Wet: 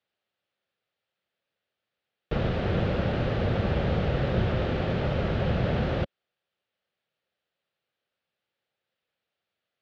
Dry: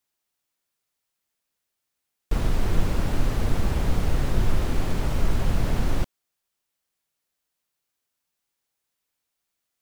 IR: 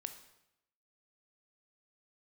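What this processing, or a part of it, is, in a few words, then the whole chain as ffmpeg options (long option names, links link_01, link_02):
guitar cabinet: -af "highpass=91,equalizer=frequency=280:width_type=q:width=4:gain=-7,equalizer=frequency=540:width_type=q:width=4:gain=6,equalizer=frequency=1000:width_type=q:width=4:gain=-8,equalizer=frequency=2200:width_type=q:width=4:gain=-3,lowpass=frequency=3600:width=0.5412,lowpass=frequency=3600:width=1.3066,volume=3.5dB"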